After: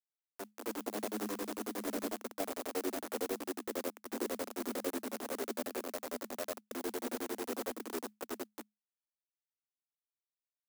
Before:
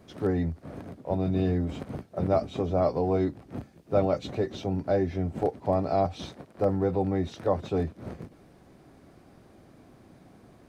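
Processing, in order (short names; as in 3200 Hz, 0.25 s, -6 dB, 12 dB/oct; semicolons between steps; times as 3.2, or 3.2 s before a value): stepped spectrum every 0.1 s; Doppler pass-by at 2.88, 37 m/s, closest 23 m; LPF 1800 Hz 24 dB/oct; echo 0.479 s -6.5 dB; compressor 6:1, threshold -44 dBFS, peak gain reduction 20 dB; grains, grains 11/s; AGC gain up to 15.5 dB; treble ducked by the level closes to 590 Hz, closed at -35.5 dBFS; bit-crush 6-bit; Chebyshev high-pass 210 Hz, order 10; clock jitter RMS 0.086 ms; gain -1 dB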